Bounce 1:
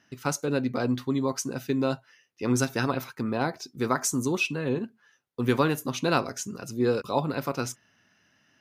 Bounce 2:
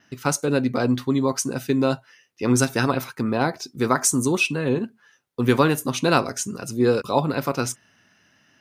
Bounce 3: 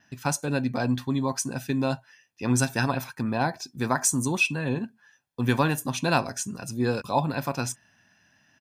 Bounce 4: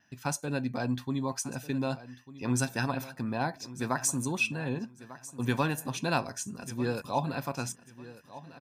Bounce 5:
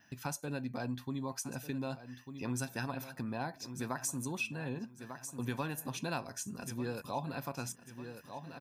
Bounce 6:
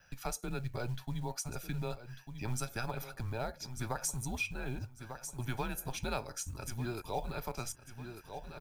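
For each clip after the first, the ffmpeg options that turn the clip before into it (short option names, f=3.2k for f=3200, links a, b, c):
-af "adynamicequalizer=threshold=0.00178:dfrequency=8900:dqfactor=3.4:tfrequency=8900:tqfactor=3.4:attack=5:release=100:ratio=0.375:range=4:mode=boostabove:tftype=bell,volume=5.5dB"
-af "aecho=1:1:1.2:0.5,volume=-4.5dB"
-af "aecho=1:1:1196|2392|3588:0.15|0.0389|0.0101,volume=-5.5dB"
-af "acompressor=threshold=-46dB:ratio=2,aexciter=amount=2.1:drive=2.8:freq=11k,volume=3dB"
-af "afreqshift=-120,acrusher=bits=7:mode=log:mix=0:aa=0.000001,volume=1dB"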